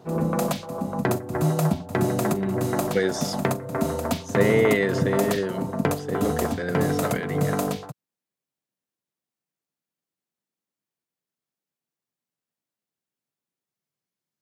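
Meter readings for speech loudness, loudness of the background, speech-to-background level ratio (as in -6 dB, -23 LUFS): -26.5 LUFS, -26.0 LUFS, -0.5 dB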